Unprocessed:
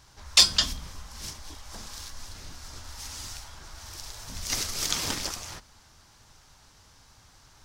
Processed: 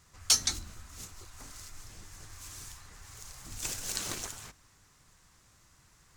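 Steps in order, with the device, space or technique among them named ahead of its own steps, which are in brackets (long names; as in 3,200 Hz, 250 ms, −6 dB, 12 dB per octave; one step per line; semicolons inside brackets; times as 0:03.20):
nightcore (speed change +24%)
level −6.5 dB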